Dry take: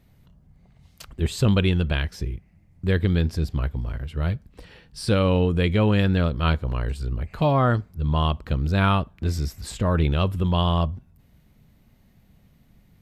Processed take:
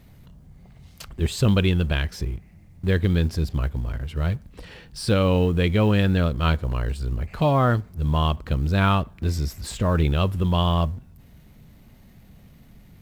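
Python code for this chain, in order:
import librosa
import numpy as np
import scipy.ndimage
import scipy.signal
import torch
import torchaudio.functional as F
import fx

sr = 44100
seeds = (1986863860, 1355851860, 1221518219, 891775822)

y = fx.law_mismatch(x, sr, coded='mu')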